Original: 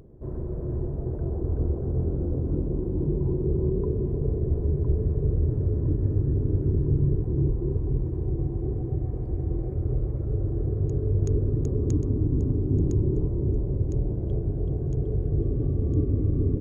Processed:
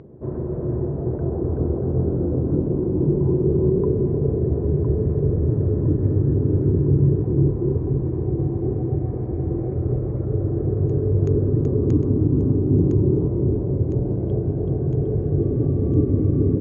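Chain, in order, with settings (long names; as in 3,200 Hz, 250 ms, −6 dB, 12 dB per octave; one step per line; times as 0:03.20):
band-pass filter 110–2,500 Hz
level +8.5 dB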